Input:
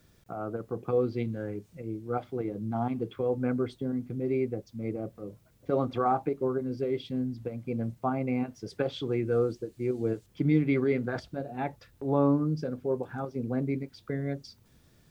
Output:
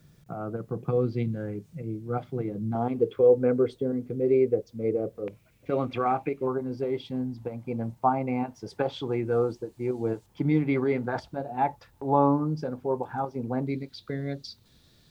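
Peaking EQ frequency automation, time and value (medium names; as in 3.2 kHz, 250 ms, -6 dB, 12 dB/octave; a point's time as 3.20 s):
peaking EQ +13 dB 0.58 oct
150 Hz
from 2.75 s 460 Hz
from 5.28 s 2.4 kHz
from 6.47 s 880 Hz
from 13.67 s 4 kHz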